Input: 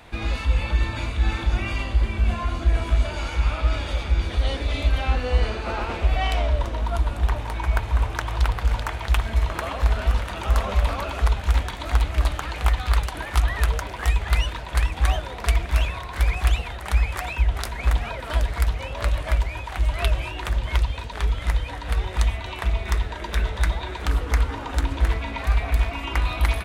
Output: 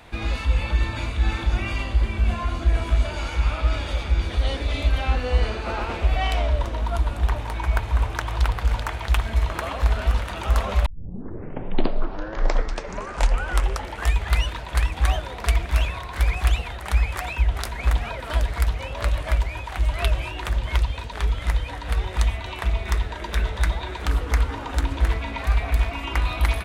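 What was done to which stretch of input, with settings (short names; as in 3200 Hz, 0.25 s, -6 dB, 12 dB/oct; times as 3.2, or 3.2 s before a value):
10.86 tape start 3.35 s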